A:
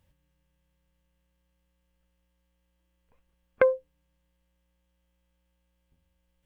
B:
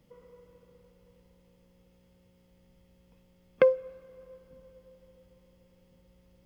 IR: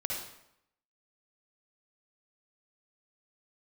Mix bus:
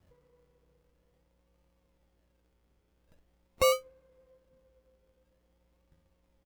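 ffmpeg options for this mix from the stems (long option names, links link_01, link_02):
-filter_complex "[0:a]acrusher=samples=36:mix=1:aa=0.000001:lfo=1:lforange=21.6:lforate=0.46,volume=2.5dB[link_01];[1:a]adelay=1.9,volume=-12.5dB[link_02];[link_01][link_02]amix=inputs=2:normalize=0,alimiter=limit=-17dB:level=0:latency=1:release=53"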